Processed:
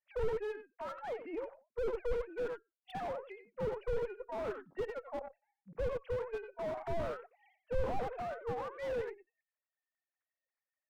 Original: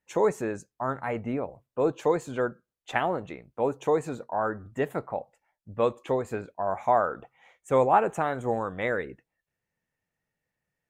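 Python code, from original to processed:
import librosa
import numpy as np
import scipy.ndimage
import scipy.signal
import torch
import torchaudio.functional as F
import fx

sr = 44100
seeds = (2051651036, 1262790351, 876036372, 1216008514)

p1 = fx.sine_speech(x, sr)
p2 = fx.cheby_harmonics(p1, sr, harmonics=(4, 7), levels_db=(-17, -23), full_scale_db=-9.0)
p3 = p2 + fx.echo_single(p2, sr, ms=92, db=-12.0, dry=0)
p4 = fx.slew_limit(p3, sr, full_power_hz=13.0)
y = F.gain(torch.from_numpy(p4), -1.5).numpy()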